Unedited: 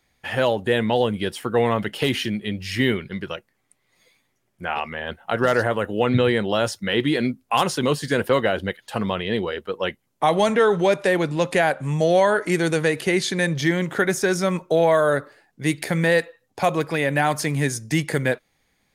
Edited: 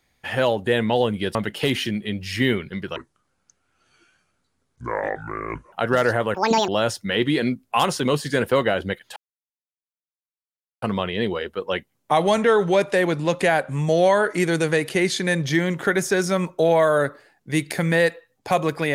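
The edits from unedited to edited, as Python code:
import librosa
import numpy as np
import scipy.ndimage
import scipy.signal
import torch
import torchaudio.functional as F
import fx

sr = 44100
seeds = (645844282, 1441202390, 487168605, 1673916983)

y = fx.edit(x, sr, fx.cut(start_s=1.35, length_s=0.39),
    fx.speed_span(start_s=3.35, length_s=1.88, speed=0.68),
    fx.speed_span(start_s=5.85, length_s=0.61, speed=1.81),
    fx.insert_silence(at_s=8.94, length_s=1.66), tone=tone)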